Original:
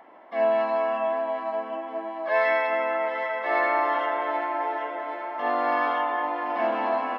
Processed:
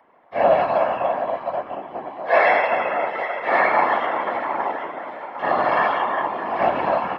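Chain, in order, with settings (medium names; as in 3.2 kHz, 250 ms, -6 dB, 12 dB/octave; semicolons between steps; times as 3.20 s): whisper effect; upward expansion 1.5:1, over -45 dBFS; trim +7 dB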